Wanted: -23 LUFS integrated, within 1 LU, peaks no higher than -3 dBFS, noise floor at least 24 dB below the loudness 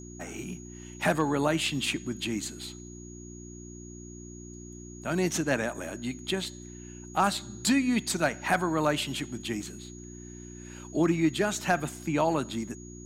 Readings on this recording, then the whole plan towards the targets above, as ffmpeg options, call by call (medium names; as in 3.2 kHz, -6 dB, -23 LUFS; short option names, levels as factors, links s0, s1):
hum 60 Hz; highest harmonic 360 Hz; hum level -43 dBFS; steady tone 6.7 kHz; tone level -49 dBFS; loudness -29.0 LUFS; peak level -11.5 dBFS; loudness target -23.0 LUFS
-> -af "bandreject=f=60:t=h:w=4,bandreject=f=120:t=h:w=4,bandreject=f=180:t=h:w=4,bandreject=f=240:t=h:w=4,bandreject=f=300:t=h:w=4,bandreject=f=360:t=h:w=4"
-af "bandreject=f=6700:w=30"
-af "volume=2"